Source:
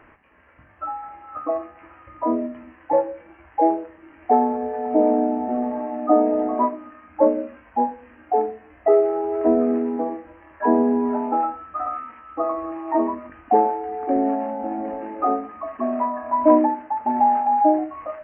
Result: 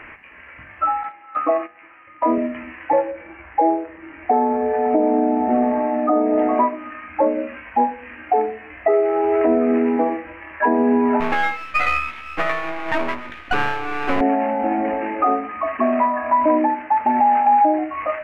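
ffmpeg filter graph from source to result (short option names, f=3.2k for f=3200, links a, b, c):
-filter_complex "[0:a]asettb=1/sr,asplit=3[a][b][c];[a]atrim=end=1.034[d];[b]atrim=start=1.03:end=2.38,asetpts=PTS-STARTPTS,afade=t=in:d=0.004:c=qsin,afade=t=out:st=1.346:d=0.004:c=qsin,agate=range=-11dB:threshold=-38dB:ratio=16:release=100:detection=peak,highpass=160[e];[c]atrim=start=2.376[f];[d][e]acrossfade=d=0.004:c1=hsin:c2=qsin[g];[g][f]acrossfade=d=0.004:c1=qsin:c2=hsin,asettb=1/sr,asplit=3[h][i][j];[h]atrim=end=3.114[k];[i]atrim=start=3.11:end=6.38,asetpts=PTS-STARTPTS,afade=t=in:d=0.004:c=qsin,afade=t=out:st=3.266:d=0.004:c=qsin,lowpass=f=1.4k:p=1,asplit=2[l][m];[m]adelay=46,volume=-11dB[n];[l][n]amix=inputs=2:normalize=0,atrim=end_sample=144207[o];[j]atrim=start=6.376[p];[k][o]acrossfade=d=0.004:c1=hsin:c2=qsin[q];[q][p]acrossfade=d=0.004:c1=qsin:c2=hsin,asettb=1/sr,asplit=3[r][s][t];[r]atrim=end=11.204[u];[s]atrim=start=11.2:end=14.21,asetpts=PTS-STARTPTS,afade=t=in:d=0.004:c=qsin,afade=t=out:st=3.006:d=0.004:c=qsin,aeval=exprs='max(val(0),0)':c=same,asplit=2[v][w];[w]adelay=17,volume=-8dB[x];[v][x]amix=inputs=2:normalize=0,atrim=end_sample=132741[y];[t]atrim=start=14.206[z];[u][y]acrossfade=d=0.004:c1=hsin:c2=qsin[aa];[aa][z]acrossfade=d=0.004:c1=qsin:c2=hsin,equalizer=f=2.3k:w=1.2:g=13.5,alimiter=limit=-14dB:level=0:latency=1:release=316,volume=6dB"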